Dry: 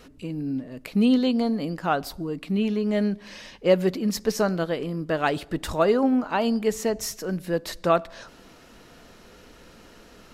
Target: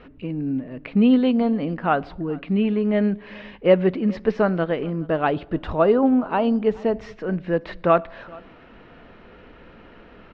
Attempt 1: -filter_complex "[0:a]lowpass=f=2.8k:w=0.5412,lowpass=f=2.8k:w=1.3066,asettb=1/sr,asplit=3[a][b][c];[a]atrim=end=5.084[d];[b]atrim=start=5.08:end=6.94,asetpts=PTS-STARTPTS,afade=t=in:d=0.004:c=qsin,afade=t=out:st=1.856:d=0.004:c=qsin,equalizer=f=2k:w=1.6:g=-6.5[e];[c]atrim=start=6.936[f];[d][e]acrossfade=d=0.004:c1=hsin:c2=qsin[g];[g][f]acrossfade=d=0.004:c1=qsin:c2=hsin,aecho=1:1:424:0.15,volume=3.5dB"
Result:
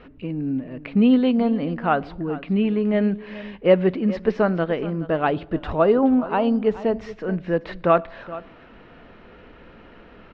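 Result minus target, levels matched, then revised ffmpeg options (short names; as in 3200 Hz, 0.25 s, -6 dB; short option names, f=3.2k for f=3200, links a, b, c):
echo-to-direct +7.5 dB
-filter_complex "[0:a]lowpass=f=2.8k:w=0.5412,lowpass=f=2.8k:w=1.3066,asettb=1/sr,asplit=3[a][b][c];[a]atrim=end=5.084[d];[b]atrim=start=5.08:end=6.94,asetpts=PTS-STARTPTS,afade=t=in:d=0.004:c=qsin,afade=t=out:st=1.856:d=0.004:c=qsin,equalizer=f=2k:w=1.6:g=-6.5[e];[c]atrim=start=6.936[f];[d][e]acrossfade=d=0.004:c1=hsin:c2=qsin[g];[g][f]acrossfade=d=0.004:c1=qsin:c2=hsin,aecho=1:1:424:0.0631,volume=3.5dB"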